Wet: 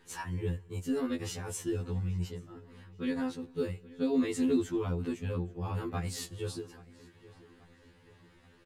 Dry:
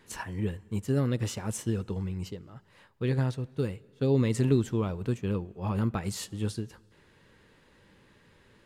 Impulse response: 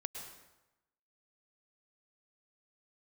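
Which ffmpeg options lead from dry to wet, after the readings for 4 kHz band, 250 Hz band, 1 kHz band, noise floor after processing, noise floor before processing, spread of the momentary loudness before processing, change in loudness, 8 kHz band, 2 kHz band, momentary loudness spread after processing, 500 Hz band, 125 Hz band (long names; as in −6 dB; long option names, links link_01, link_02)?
−2.0 dB, −1.5 dB, −2.5 dB, −61 dBFS, −61 dBFS, 10 LU, −3.5 dB, −2.5 dB, −2.0 dB, 12 LU, −3.0 dB, −7.5 dB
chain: -filter_complex "[0:a]bandreject=frequency=620:width=12,asplit=2[link_01][link_02];[link_02]adelay=830,lowpass=frequency=3400:poles=1,volume=-20dB,asplit=2[link_03][link_04];[link_04]adelay=830,lowpass=frequency=3400:poles=1,volume=0.5,asplit=2[link_05][link_06];[link_06]adelay=830,lowpass=frequency=3400:poles=1,volume=0.5,asplit=2[link_07][link_08];[link_08]adelay=830,lowpass=frequency=3400:poles=1,volume=0.5[link_09];[link_03][link_05][link_07][link_09]amix=inputs=4:normalize=0[link_10];[link_01][link_10]amix=inputs=2:normalize=0,afftfilt=real='re*2*eq(mod(b,4),0)':imag='im*2*eq(mod(b,4),0)':win_size=2048:overlap=0.75"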